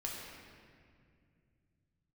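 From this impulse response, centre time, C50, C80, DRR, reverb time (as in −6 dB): 112 ms, 0.0 dB, 1.5 dB, −3.5 dB, 2.2 s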